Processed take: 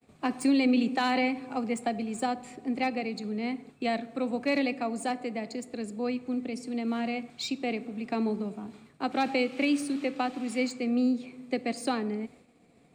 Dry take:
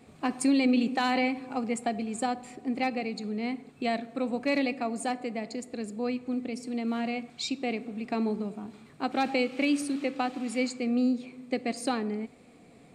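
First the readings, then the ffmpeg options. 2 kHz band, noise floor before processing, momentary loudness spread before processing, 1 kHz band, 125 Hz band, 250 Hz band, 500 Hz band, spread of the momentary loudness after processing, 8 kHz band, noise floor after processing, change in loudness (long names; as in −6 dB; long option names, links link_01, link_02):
0.0 dB, −55 dBFS, 9 LU, 0.0 dB, 0.0 dB, 0.0 dB, 0.0 dB, 9 LU, −2.5 dB, −60 dBFS, 0.0 dB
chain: -filter_complex "[0:a]agate=range=-33dB:threshold=-48dB:ratio=3:detection=peak,acrossover=split=210|400|4500[link_01][link_02][link_03][link_04];[link_04]asoftclip=type=tanh:threshold=-35.5dB[link_05];[link_01][link_02][link_03][link_05]amix=inputs=4:normalize=0"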